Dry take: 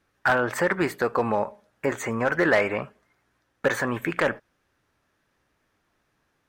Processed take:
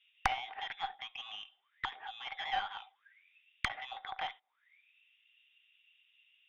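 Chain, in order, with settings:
voice inversion scrambler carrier 3,700 Hz
envelope filter 770–2,800 Hz, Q 21, down, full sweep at −28.5 dBFS
tube saturation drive 37 dB, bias 0.55
level +18 dB

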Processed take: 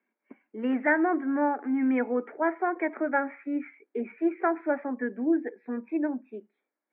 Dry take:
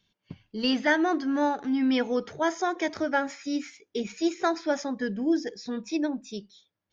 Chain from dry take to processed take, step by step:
Chebyshev band-pass filter 230–2,300 Hz, order 5

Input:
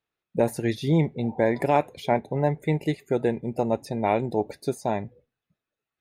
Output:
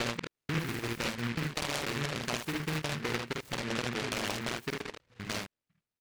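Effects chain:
slices reordered back to front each 98 ms, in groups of 5
low-pass that shuts in the quiet parts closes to 2,000 Hz, open at −18.5 dBFS
downward compressor, threshold −26 dBFS, peak gain reduction 10.5 dB
on a send: ambience of single reflections 50 ms −3 dB, 76 ms −5 dB
on the sum: short delay modulated by noise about 1,700 Hz, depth 0.34 ms
level −6 dB

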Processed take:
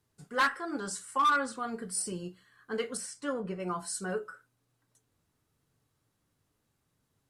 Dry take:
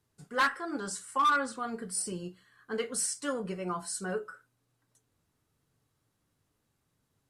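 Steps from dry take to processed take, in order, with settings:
0:02.97–0:03.60: high-shelf EQ 3,900 Hz −12 dB

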